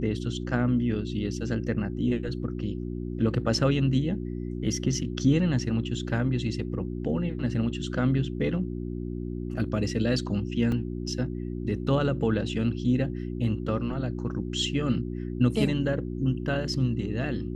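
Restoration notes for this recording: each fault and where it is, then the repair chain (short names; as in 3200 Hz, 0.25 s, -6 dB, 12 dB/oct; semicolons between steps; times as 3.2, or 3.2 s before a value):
hum 60 Hz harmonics 6 -33 dBFS
10.72 gap 2.5 ms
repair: de-hum 60 Hz, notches 6; interpolate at 10.72, 2.5 ms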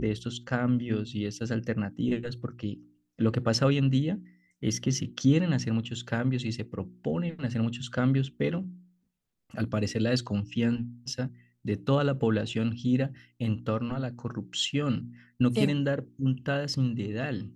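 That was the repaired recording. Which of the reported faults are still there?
none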